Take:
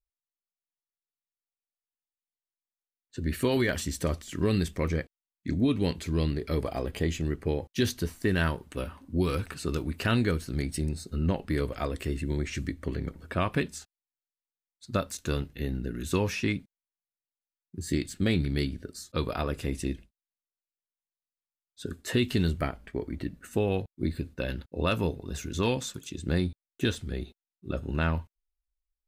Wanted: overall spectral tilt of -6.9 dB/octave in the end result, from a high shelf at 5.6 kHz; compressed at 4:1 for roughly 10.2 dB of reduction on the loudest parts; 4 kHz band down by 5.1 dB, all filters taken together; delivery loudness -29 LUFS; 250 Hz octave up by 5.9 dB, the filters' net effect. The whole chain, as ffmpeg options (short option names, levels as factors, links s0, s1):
-af "equalizer=f=250:t=o:g=7.5,equalizer=f=4000:t=o:g=-4.5,highshelf=f=5600:g=-5.5,acompressor=threshold=0.0398:ratio=4,volume=1.78"